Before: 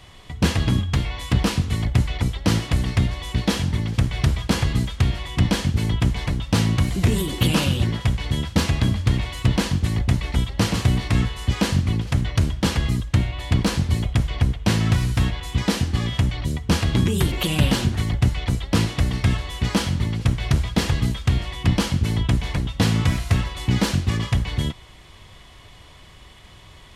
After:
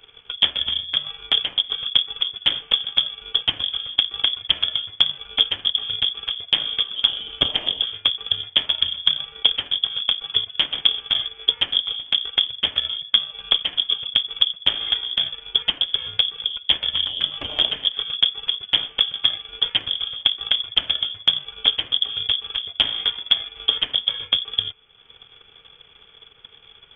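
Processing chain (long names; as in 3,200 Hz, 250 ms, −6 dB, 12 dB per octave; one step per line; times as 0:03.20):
one-sided soft clipper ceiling −21.5 dBFS
voice inversion scrambler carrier 3,400 Hz
transient designer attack +10 dB, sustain −7 dB
level −5.5 dB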